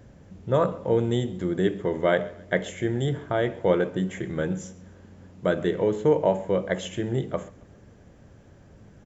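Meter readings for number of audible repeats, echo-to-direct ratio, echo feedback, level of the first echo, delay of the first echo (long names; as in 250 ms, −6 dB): 2, −21.5 dB, 38%, −22.0 dB, 135 ms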